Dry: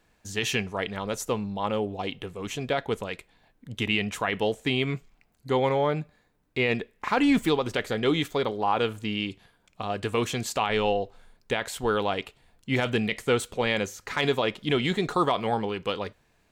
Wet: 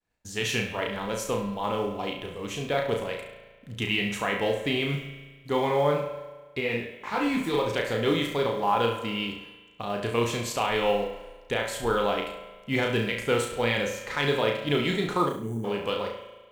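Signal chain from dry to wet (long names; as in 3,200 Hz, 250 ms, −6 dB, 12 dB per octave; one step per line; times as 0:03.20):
downward expander −55 dBFS
spring reverb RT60 1.4 s, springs 36 ms, chirp 50 ms, DRR 7.5 dB
in parallel at −10 dB: floating-point word with a short mantissa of 2 bits
0:15.29–0:15.64: on the sum: gain on a spectral selection 440–5,800 Hz −25 dB
on a send: flutter between parallel walls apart 5.9 metres, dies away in 0.46 s
0:06.59–0:07.53: on the sum: micro pitch shift up and down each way 39 cents → 26 cents
level −4.5 dB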